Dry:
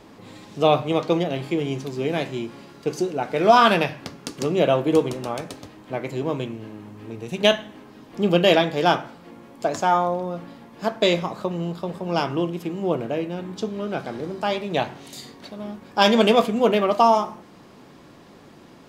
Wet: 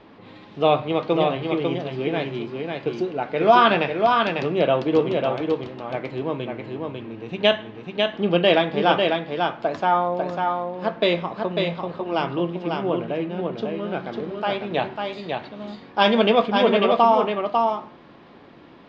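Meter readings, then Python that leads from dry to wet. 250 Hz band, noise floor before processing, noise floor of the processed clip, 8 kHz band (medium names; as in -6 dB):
-0.5 dB, -48 dBFS, -47 dBFS, under -15 dB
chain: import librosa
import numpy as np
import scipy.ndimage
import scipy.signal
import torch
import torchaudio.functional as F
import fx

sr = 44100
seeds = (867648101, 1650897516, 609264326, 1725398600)

y = scipy.signal.sosfilt(scipy.signal.butter(4, 3800.0, 'lowpass', fs=sr, output='sos'), x)
y = fx.low_shelf(y, sr, hz=230.0, db=-4.0)
y = y + 10.0 ** (-4.0 / 20.0) * np.pad(y, (int(547 * sr / 1000.0), 0))[:len(y)]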